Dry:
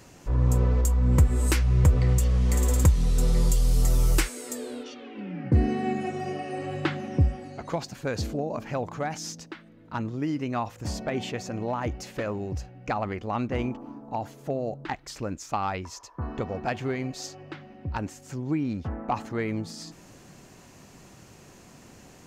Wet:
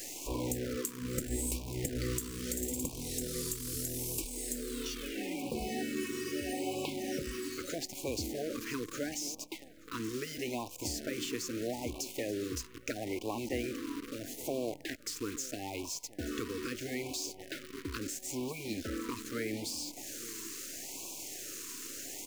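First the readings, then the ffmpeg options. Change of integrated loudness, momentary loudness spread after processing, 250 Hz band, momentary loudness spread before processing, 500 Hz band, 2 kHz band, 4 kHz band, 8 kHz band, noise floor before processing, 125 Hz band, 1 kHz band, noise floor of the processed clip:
-10.0 dB, 5 LU, -7.0 dB, 15 LU, -6.0 dB, -5.5 dB, -0.5 dB, 0.0 dB, -51 dBFS, -19.0 dB, -13.0 dB, -51 dBFS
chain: -filter_complex "[0:a]asplit=2[s0][s1];[s1]asoftclip=type=tanh:threshold=0.126,volume=0.501[s2];[s0][s2]amix=inputs=2:normalize=0,crystalizer=i=6.5:c=0,acrossover=split=330[s3][s4];[s4]acompressor=threshold=0.0251:ratio=8[s5];[s3][s5]amix=inputs=2:normalize=0,lowshelf=f=230:t=q:w=3:g=-8.5,asplit=2[s6][s7];[s7]aecho=0:1:878:0.133[s8];[s6][s8]amix=inputs=2:normalize=0,acrusher=bits=7:dc=4:mix=0:aa=0.000001,afftfilt=real='re*lt(hypot(re,im),0.398)':imag='im*lt(hypot(re,im),0.398)':win_size=1024:overlap=0.75,afftfilt=real='re*(1-between(b*sr/1024,670*pow(1600/670,0.5+0.5*sin(2*PI*0.77*pts/sr))/1.41,670*pow(1600/670,0.5+0.5*sin(2*PI*0.77*pts/sr))*1.41))':imag='im*(1-between(b*sr/1024,670*pow(1600/670,0.5+0.5*sin(2*PI*0.77*pts/sr))/1.41,670*pow(1600/670,0.5+0.5*sin(2*PI*0.77*pts/sr))*1.41))':win_size=1024:overlap=0.75,volume=0.531"

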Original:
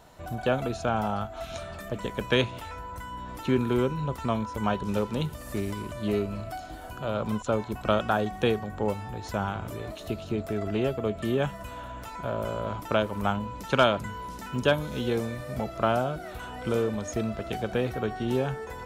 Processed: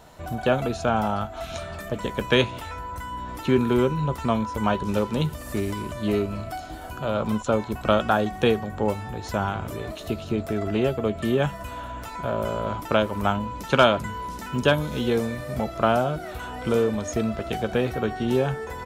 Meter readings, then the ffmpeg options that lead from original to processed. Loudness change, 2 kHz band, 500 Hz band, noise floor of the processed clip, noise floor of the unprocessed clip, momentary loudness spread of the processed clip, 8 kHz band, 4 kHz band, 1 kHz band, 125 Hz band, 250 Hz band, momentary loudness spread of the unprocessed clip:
+4.0 dB, +4.0 dB, +4.0 dB, -37 dBFS, -41 dBFS, 12 LU, +4.0 dB, +4.0 dB, +4.5 dB, +3.5 dB, +4.5 dB, 12 LU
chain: -filter_complex "[0:a]asplit=2[s0][s1];[s1]adelay=13,volume=0.224[s2];[s0][s2]amix=inputs=2:normalize=0,volume=1.58"

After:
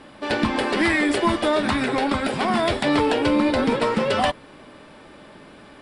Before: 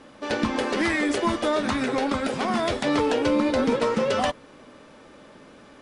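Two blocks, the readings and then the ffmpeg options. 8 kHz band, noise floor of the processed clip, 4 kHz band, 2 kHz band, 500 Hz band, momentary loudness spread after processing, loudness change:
+0.5 dB, -46 dBFS, +4.0 dB, +4.5 dB, +1.5 dB, 4 LU, +3.0 dB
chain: -af "acontrast=69,equalizer=f=250:t=o:w=0.33:g=-4,equalizer=f=500:t=o:w=0.33:g=-6,equalizer=f=1250:t=o:w=0.33:g=-3,equalizer=f=6300:t=o:w=0.33:g=-11,volume=0.841"

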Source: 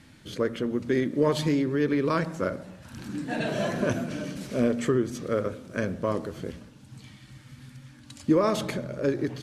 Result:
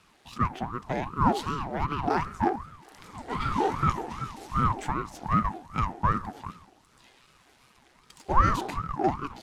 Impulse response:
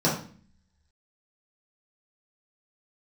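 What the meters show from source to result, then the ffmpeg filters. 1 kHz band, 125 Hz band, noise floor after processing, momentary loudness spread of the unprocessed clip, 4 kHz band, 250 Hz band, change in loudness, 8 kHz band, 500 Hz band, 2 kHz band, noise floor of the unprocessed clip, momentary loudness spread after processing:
+9.5 dB, +1.0 dB, -61 dBFS, 19 LU, -4.0 dB, -6.0 dB, -1.0 dB, -5.0 dB, -8.5 dB, -2.0 dB, -52 dBFS, 13 LU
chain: -af "aeval=exprs='if(lt(val(0),0),0.447*val(0),val(0))':c=same,highpass=f=560:t=q:w=4.2,aeval=exprs='val(0)*sin(2*PI*460*n/s+460*0.6/2.6*sin(2*PI*2.6*n/s))':c=same"

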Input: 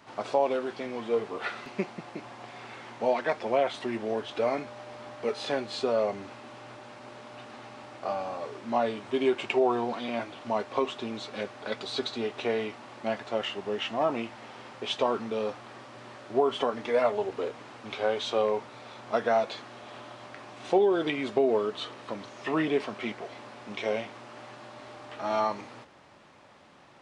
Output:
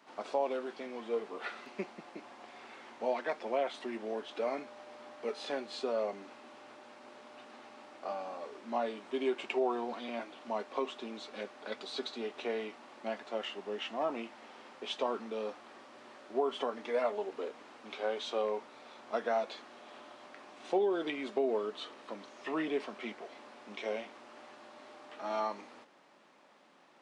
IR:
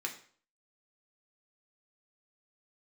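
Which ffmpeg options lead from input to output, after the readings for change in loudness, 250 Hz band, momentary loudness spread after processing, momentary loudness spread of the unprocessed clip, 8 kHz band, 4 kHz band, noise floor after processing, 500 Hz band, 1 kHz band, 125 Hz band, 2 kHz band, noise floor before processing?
-7.0 dB, -7.5 dB, 19 LU, 19 LU, no reading, -7.0 dB, -55 dBFS, -7.0 dB, -7.0 dB, under -15 dB, -7.0 dB, -48 dBFS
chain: -af "highpass=f=200:w=0.5412,highpass=f=200:w=1.3066,volume=0.447"

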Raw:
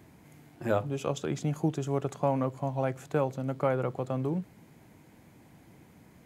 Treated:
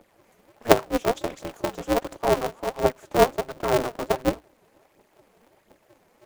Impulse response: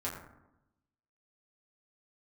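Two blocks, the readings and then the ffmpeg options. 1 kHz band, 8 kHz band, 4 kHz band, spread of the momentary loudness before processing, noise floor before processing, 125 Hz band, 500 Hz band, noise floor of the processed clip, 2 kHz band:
+9.0 dB, +10.5 dB, +14.0 dB, 4 LU, -57 dBFS, -4.5 dB, +7.5 dB, -63 dBFS, +10.5 dB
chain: -filter_complex "[0:a]highpass=f=470:t=q:w=4.9,asplit=2[s0][s1];[s1]acrusher=bits=4:mix=0:aa=0.5,volume=0.316[s2];[s0][s2]amix=inputs=2:normalize=0,aphaser=in_gain=1:out_gain=1:delay=3.7:decay=0.78:speed=1.4:type=triangular,aeval=exprs='val(0)*sgn(sin(2*PI*120*n/s))':c=same,volume=0.422"

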